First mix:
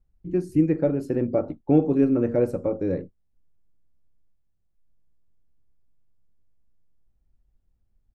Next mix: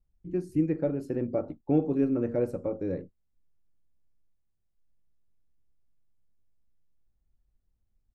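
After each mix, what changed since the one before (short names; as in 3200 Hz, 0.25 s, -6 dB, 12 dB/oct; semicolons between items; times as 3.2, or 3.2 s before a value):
first voice -6.0 dB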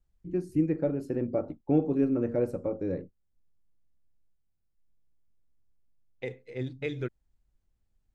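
second voice: entry -2.00 s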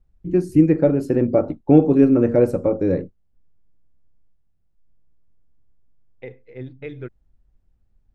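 first voice +12.0 dB; second voice: add LPF 2500 Hz 12 dB/oct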